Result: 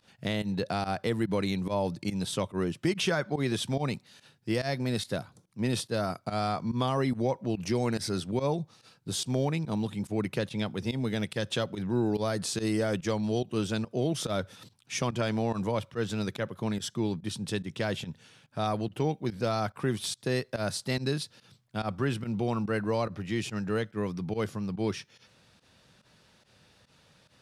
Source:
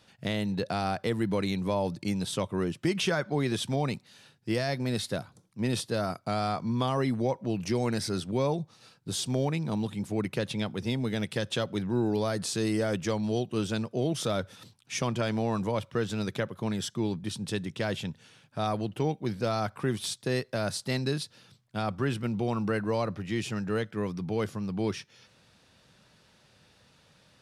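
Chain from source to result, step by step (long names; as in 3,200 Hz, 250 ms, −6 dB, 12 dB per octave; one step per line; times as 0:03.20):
fake sidechain pumping 143 BPM, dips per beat 1, −18 dB, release 81 ms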